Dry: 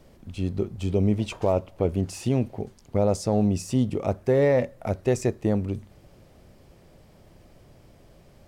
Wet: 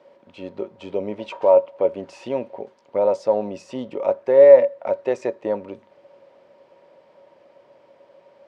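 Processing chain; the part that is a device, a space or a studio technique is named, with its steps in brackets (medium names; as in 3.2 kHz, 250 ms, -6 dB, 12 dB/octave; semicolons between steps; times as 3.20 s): tin-can telephone (band-pass 410–3100 Hz; small resonant body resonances 560/940 Hz, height 16 dB, ringing for 95 ms); trim +1.5 dB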